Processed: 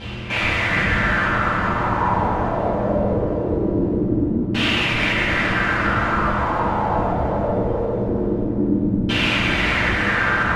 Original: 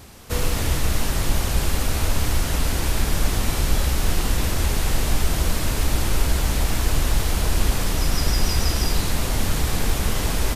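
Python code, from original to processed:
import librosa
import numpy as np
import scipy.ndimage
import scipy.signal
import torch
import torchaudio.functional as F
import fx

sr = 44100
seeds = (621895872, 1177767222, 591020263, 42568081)

y = fx.dereverb_blind(x, sr, rt60_s=1.7)
y = fx.over_compress(y, sr, threshold_db=-22.0, ratio=-0.5)
y = (np.mod(10.0 ** (25.5 / 20.0) * y + 1.0, 2.0) - 1.0) / 10.0 ** (25.5 / 20.0)
y = fx.dmg_buzz(y, sr, base_hz=120.0, harmonics=4, level_db=-42.0, tilt_db=-4, odd_only=False)
y = fx.filter_lfo_lowpass(y, sr, shape='saw_down', hz=0.22, low_hz=230.0, high_hz=3000.0, q=4.4)
y = fx.echo_feedback(y, sr, ms=409, feedback_pct=47, wet_db=-8)
y = fx.rev_fdn(y, sr, rt60_s=1.2, lf_ratio=1.05, hf_ratio=0.65, size_ms=30.0, drr_db=-9.5)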